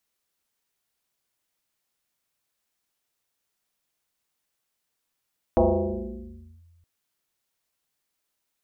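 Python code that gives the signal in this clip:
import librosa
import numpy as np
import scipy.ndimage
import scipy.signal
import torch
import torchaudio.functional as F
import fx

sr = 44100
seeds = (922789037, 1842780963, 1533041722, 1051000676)

y = fx.fm2(sr, length_s=1.27, level_db=-14, carrier_hz=85.1, ratio=1.7, index=4.9, index_s=1.06, decay_s=1.72, shape='linear')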